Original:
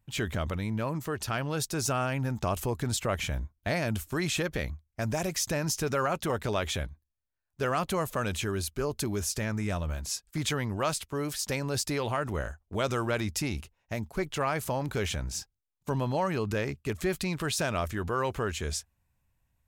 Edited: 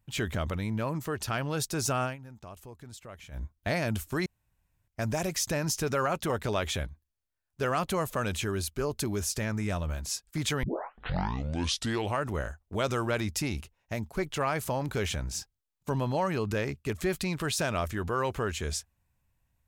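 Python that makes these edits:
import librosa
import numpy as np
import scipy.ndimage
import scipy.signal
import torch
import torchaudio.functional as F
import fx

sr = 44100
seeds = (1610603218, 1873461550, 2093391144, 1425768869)

y = fx.edit(x, sr, fx.fade_down_up(start_s=2.04, length_s=1.4, db=-16.5, fade_s=0.13),
    fx.room_tone_fill(start_s=4.26, length_s=0.62),
    fx.tape_start(start_s=10.63, length_s=1.6), tone=tone)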